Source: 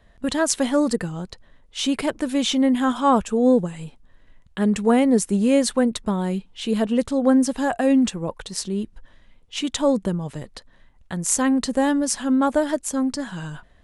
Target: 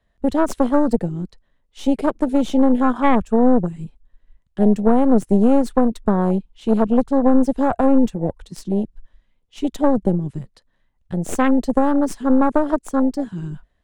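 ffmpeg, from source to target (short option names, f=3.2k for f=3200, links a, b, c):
-filter_complex "[0:a]aeval=exprs='0.891*(cos(1*acos(clip(val(0)/0.891,-1,1)))-cos(1*PI/2))+0.0562*(cos(3*acos(clip(val(0)/0.891,-1,1)))-cos(3*PI/2))+0.00891*(cos(6*acos(clip(val(0)/0.891,-1,1)))-cos(6*PI/2))+0.1*(cos(8*acos(clip(val(0)/0.891,-1,1)))-cos(8*PI/2))':c=same,afwtdn=0.0562,acrossover=split=200[a][b];[b]acompressor=threshold=-19dB:ratio=6[c];[a][c]amix=inputs=2:normalize=0,volume=6dB"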